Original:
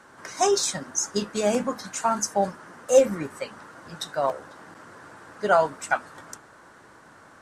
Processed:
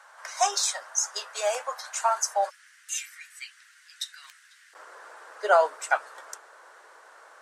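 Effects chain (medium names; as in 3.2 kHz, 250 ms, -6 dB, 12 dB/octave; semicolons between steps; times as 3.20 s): steep high-pass 600 Hz 36 dB/octave, from 2.49 s 1.8 kHz, from 4.73 s 440 Hz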